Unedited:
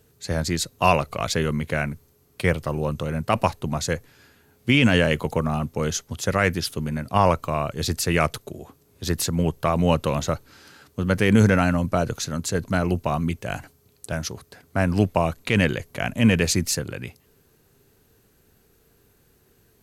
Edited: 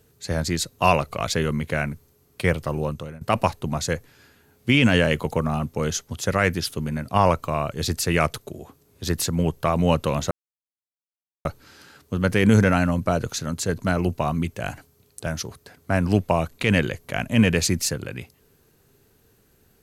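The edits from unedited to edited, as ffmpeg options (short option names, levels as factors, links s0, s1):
-filter_complex "[0:a]asplit=3[s0][s1][s2];[s0]atrim=end=3.21,asetpts=PTS-STARTPTS,afade=t=out:st=2.82:d=0.39:silence=0.0891251[s3];[s1]atrim=start=3.21:end=10.31,asetpts=PTS-STARTPTS,afade=t=in:d=0.004:c=hsin:silence=0.0891251,afade=t=out:st=7.096:d=0.004:c=hsin,apad=pad_dur=1.14[s4];[s2]atrim=start=10.31,asetpts=PTS-STARTPTS,afade=t=in:d=0.004:c=hsin[s5];[s3][s4][s5]concat=n=3:v=0:a=1"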